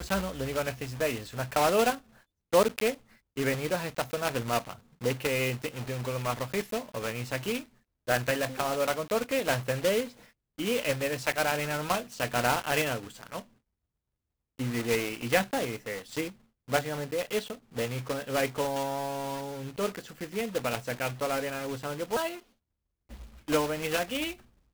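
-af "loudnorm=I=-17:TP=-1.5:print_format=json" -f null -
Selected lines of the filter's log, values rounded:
"input_i" : "-30.6",
"input_tp" : "-11.9",
"input_lra" : "4.5",
"input_thresh" : "-41.1",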